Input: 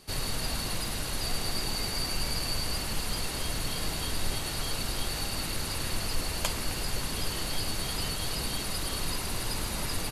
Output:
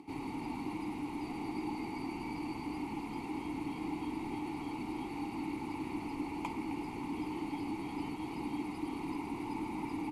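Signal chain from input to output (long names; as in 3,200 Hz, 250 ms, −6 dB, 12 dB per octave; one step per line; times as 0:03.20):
parametric band 3,900 Hz −11 dB 1.8 octaves
upward compression, threshold −46 dBFS
formant filter u
level +11.5 dB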